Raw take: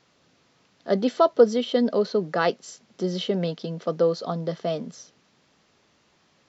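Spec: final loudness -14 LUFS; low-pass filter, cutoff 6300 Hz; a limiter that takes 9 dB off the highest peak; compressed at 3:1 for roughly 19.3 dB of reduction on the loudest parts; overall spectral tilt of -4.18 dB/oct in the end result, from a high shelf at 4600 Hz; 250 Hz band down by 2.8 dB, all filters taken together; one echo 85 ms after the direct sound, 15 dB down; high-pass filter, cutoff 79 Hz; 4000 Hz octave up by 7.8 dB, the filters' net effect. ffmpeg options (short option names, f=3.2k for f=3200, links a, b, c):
-af "highpass=79,lowpass=6.3k,equalizer=f=250:t=o:g=-3.5,equalizer=f=4k:t=o:g=9,highshelf=f=4.6k:g=3.5,acompressor=threshold=-38dB:ratio=3,alimiter=level_in=5dB:limit=-24dB:level=0:latency=1,volume=-5dB,aecho=1:1:85:0.178,volume=26dB"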